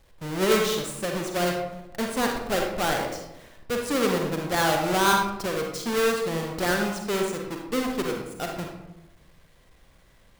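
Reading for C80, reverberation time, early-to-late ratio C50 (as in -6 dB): 6.0 dB, 0.90 s, 2.5 dB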